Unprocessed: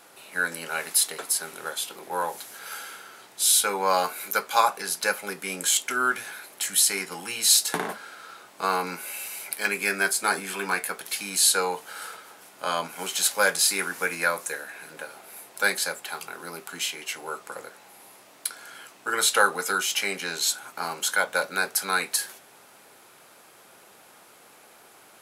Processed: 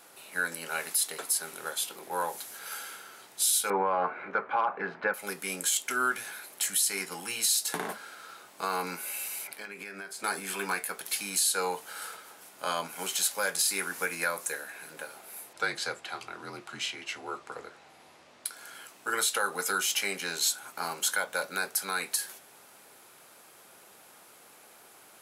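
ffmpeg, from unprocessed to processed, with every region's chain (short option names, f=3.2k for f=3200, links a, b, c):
-filter_complex "[0:a]asettb=1/sr,asplit=3[a][b][c];[a]atrim=end=3.704[d];[b]atrim=start=3.7:end=5.14,asetpts=PTS-STARTPTS,afade=t=in:d=0.004:c=qsin,afade=t=out:st=1.436:d=0.004:c=qsin,lowpass=f=1.9k:w=0.5412,lowpass=f=1.9k:w=1.3066,acontrast=70[e];[c]atrim=start=5.136[f];[d][e]acrossfade=d=0.004:c1=hsin:c2=qsin[g];[g][f]acrossfade=d=0.004:c1=qsin:c2=hsin,asettb=1/sr,asplit=3[h][i][j];[h]atrim=end=9.474[k];[i]atrim=start=9.47:end=10.24,asetpts=PTS-STARTPTS,afade=t=in:d=0.004:c=qsin,afade=t=out:st=0.766:d=0.004:c=qsin,equalizer=f=12k:t=o:w=1.7:g=-13,acompressor=threshold=-34dB:ratio=10:attack=3.2:release=140:knee=1:detection=peak[l];[j]atrim=start=10.236[m];[k][l]acrossfade=d=0.004:c1=hsin:c2=qsin[n];[n][m]acrossfade=d=0.004:c1=qsin:c2=hsin,asettb=1/sr,asplit=3[o][p][q];[o]atrim=end=15.534[r];[p]atrim=start=15.53:end=18.46,asetpts=PTS-STARTPTS,afade=t=in:d=0.004:c=qsin,afade=t=out:st=2.926:d=0.004:c=qsin,afreqshift=-40,lowpass=4.9k[s];[q]atrim=start=18.456[t];[r][s]acrossfade=d=0.004:c1=hsin:c2=qsin[u];[u][t]acrossfade=d=0.004:c1=qsin:c2=hsin,alimiter=limit=-14.5dB:level=0:latency=1:release=169,highshelf=f=6.6k:g=4.5,volume=-3.5dB"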